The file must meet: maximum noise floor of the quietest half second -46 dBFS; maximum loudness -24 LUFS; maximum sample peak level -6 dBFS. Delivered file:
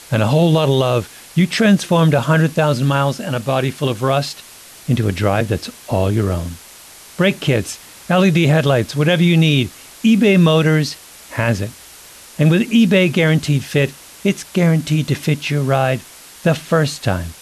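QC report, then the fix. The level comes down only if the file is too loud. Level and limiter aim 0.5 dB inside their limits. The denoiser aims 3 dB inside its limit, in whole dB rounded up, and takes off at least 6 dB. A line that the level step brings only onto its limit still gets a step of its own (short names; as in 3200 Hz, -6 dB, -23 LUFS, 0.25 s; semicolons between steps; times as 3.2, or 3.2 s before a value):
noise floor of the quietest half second -40 dBFS: fail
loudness -16.5 LUFS: fail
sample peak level -4.5 dBFS: fail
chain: gain -8 dB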